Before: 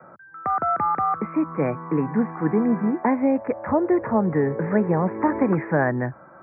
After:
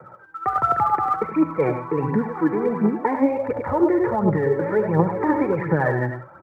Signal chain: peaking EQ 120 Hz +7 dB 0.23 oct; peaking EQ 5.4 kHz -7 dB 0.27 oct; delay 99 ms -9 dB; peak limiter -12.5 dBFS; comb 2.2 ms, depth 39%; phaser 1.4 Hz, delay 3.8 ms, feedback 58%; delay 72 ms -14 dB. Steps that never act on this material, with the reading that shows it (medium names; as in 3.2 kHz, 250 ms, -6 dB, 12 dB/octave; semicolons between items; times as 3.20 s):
peaking EQ 5.4 kHz: input has nothing above 2 kHz